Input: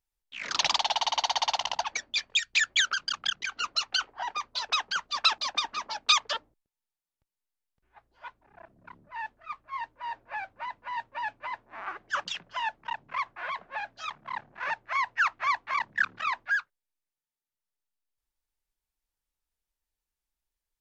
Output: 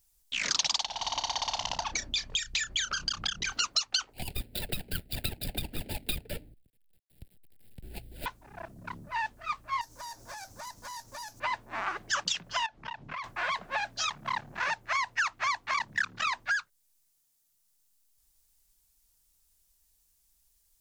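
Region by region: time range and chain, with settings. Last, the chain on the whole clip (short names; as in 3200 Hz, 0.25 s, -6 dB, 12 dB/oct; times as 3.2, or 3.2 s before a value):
0.85–3.52 tilt -2.5 dB/oct + compressor 2:1, threshold -39 dBFS + doubler 32 ms -11 dB
4.13–8.26 median filter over 41 samples + fixed phaser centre 2700 Hz, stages 4 + three-band squash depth 70%
9.81–11.4 resonant high shelf 4100 Hz +13.5 dB, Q 3 + compressor 10:1, threshold -48 dBFS + running maximum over 3 samples
12.66–13.24 LPF 4300 Hz + compressor 8:1, threshold -43 dBFS
whole clip: tone controls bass +7 dB, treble +15 dB; compressor 4:1, threshold -36 dBFS; gain +7.5 dB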